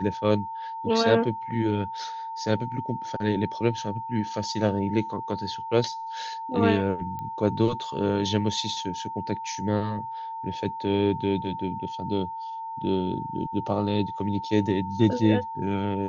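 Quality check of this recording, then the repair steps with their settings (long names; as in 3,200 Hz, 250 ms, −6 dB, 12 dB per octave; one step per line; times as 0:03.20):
whistle 900 Hz −32 dBFS
0:07.19: click −23 dBFS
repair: click removal
notch filter 900 Hz, Q 30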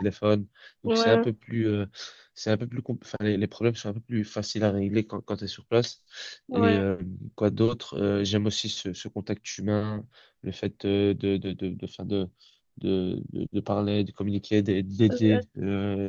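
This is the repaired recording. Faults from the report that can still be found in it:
none of them is left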